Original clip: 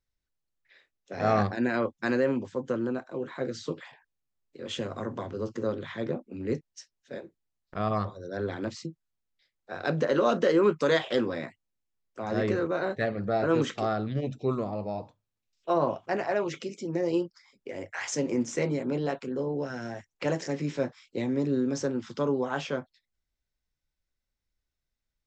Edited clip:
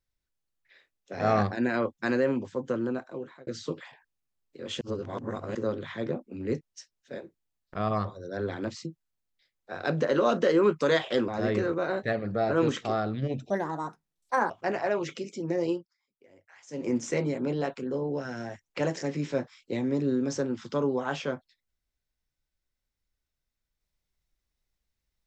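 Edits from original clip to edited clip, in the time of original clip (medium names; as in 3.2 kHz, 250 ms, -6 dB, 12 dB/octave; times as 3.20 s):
3.05–3.47 s: fade out
4.81–5.55 s: reverse
11.28–12.21 s: delete
14.43–15.95 s: speed 152%
17.11–18.35 s: dip -20.5 dB, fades 0.22 s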